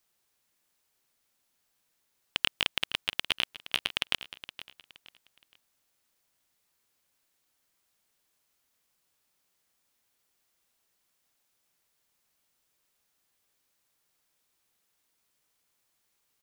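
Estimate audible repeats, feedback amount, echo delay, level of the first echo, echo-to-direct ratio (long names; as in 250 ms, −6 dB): 3, 31%, 469 ms, −14.5 dB, −14.0 dB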